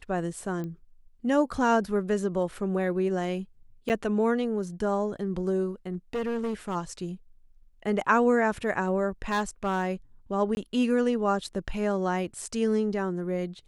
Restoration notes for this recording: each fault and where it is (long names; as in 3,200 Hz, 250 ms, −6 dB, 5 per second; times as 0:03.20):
0:00.64: click −25 dBFS
0:03.89–0:03.90: drop-out 8.8 ms
0:05.93–0:06.76: clipping −26 dBFS
0:09.31–0:09.89: clipping −22 dBFS
0:10.55–0:10.57: drop-out 21 ms